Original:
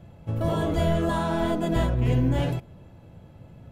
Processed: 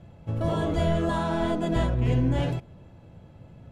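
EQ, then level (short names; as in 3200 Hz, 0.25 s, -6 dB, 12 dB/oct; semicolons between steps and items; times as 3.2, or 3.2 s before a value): LPF 8800 Hz 12 dB/oct; -1.0 dB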